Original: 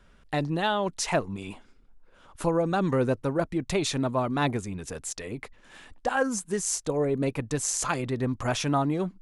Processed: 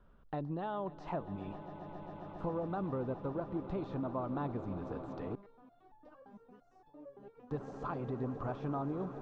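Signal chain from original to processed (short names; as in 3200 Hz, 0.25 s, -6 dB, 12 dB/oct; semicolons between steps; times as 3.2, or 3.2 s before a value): de-esser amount 95%; ladder low-pass 4800 Hz, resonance 20%; compressor 3:1, threshold -36 dBFS, peak gain reduction 9 dB; EQ curve 1200 Hz 0 dB, 2100 Hz -16 dB, 3400 Hz -13 dB; swelling echo 0.135 s, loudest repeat 8, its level -17 dB; 5.35–7.51 stepped resonator 8.8 Hz 200–860 Hz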